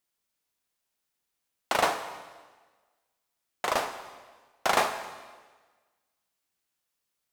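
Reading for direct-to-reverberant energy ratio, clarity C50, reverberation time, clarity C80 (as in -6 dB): 7.5 dB, 9.5 dB, 1.4 s, 11.0 dB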